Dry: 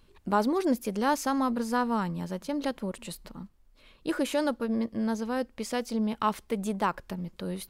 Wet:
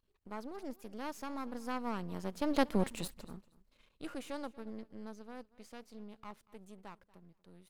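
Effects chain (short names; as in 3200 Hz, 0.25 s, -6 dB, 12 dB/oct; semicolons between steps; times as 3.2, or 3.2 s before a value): half-wave gain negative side -12 dB; Doppler pass-by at 2.77, 10 m/s, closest 2 m; feedback echo 0.236 s, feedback 17%, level -21 dB; gain +5.5 dB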